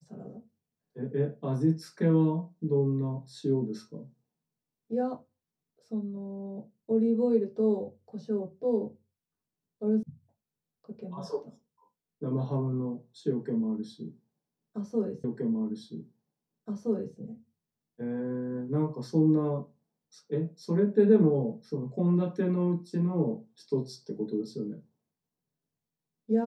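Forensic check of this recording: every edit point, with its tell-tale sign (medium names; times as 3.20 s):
10.03 s: sound stops dead
15.24 s: repeat of the last 1.92 s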